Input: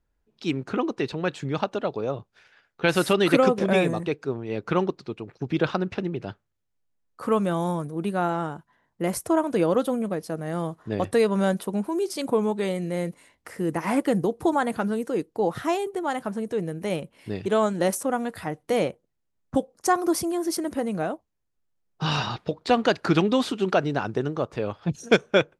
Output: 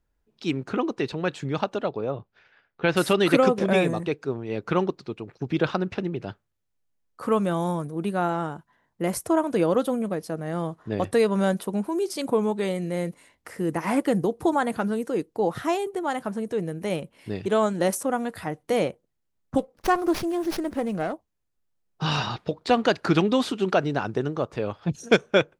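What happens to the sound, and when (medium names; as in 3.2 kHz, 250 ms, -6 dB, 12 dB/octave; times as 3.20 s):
1.89–2.97 s: distance through air 180 m
10.30–10.97 s: treble shelf 8.6 kHz -7 dB
19.58–21.13 s: sliding maximum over 5 samples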